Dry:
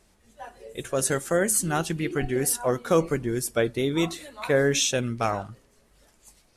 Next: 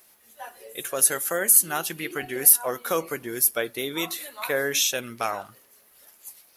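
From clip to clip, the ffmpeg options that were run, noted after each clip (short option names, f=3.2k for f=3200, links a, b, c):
-filter_complex "[0:a]highpass=f=950:p=1,asplit=2[a][b];[b]acompressor=threshold=-35dB:ratio=6,volume=-2dB[c];[a][c]amix=inputs=2:normalize=0,aexciter=amount=6.6:drive=6.9:freq=11k"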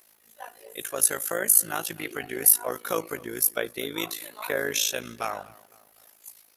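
-filter_complex "[0:a]asplit=2[a][b];[b]adelay=251,lowpass=f=2.8k:p=1,volume=-21.5dB,asplit=2[c][d];[d]adelay=251,lowpass=f=2.8k:p=1,volume=0.47,asplit=2[e][f];[f]adelay=251,lowpass=f=2.8k:p=1,volume=0.47[g];[a][c][e][g]amix=inputs=4:normalize=0,tremolo=f=54:d=0.824,volume=1dB"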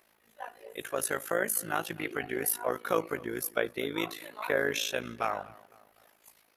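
-af "bass=f=250:g=0,treble=f=4k:g=-13"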